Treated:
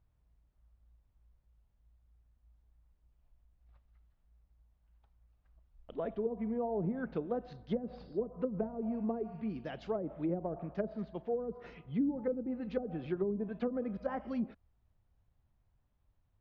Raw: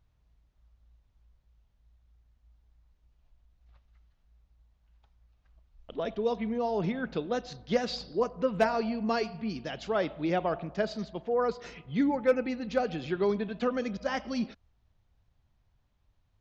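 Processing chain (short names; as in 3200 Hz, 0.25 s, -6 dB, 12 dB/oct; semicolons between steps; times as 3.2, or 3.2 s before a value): treble ducked by the level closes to 340 Hz, closed at -23.5 dBFS; LPF 1600 Hz 6 dB/oct; gain -3.5 dB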